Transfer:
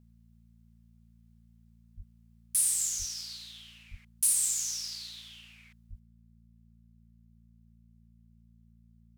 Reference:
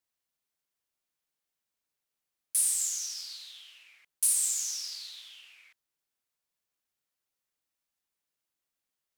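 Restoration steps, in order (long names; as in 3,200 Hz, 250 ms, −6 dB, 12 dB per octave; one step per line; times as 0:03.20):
hum removal 57 Hz, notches 4
high-pass at the plosives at 0:01.96/0:02.98/0:03.90/0:05.89
level correction +7.5 dB, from 0:05.99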